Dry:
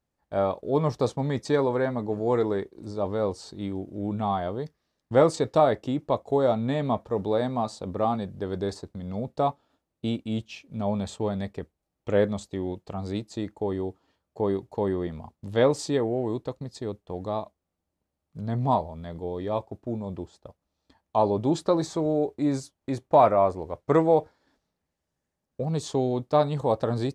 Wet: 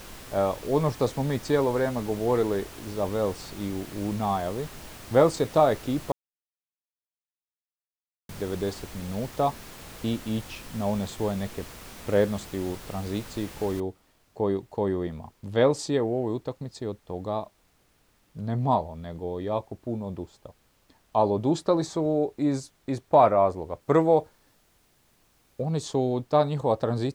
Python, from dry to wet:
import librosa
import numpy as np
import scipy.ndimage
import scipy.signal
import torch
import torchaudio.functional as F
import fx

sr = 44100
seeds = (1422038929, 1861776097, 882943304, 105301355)

y = fx.noise_floor_step(x, sr, seeds[0], at_s=13.8, before_db=-43, after_db=-65, tilt_db=3.0)
y = fx.high_shelf(y, sr, hz=5900.0, db=4.0, at=(23.81, 25.62))
y = fx.edit(y, sr, fx.silence(start_s=6.12, length_s=2.17), tone=tone)